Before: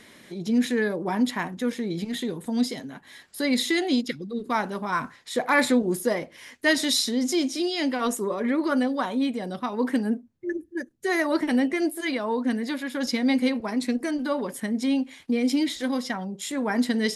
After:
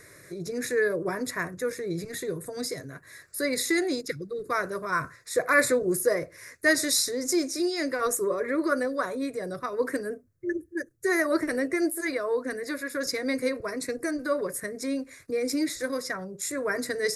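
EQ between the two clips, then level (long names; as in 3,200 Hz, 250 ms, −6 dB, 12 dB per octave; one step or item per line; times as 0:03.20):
parametric band 120 Hz +9.5 dB 1.3 octaves
high-shelf EQ 4,900 Hz +5 dB
phaser with its sweep stopped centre 840 Hz, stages 6
+1.5 dB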